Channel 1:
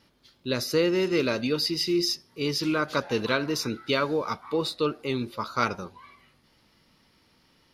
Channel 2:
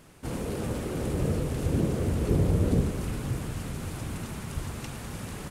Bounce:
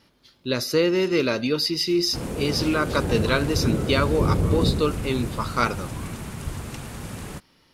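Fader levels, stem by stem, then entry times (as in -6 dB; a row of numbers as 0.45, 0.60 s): +3.0, +2.5 dB; 0.00, 1.90 s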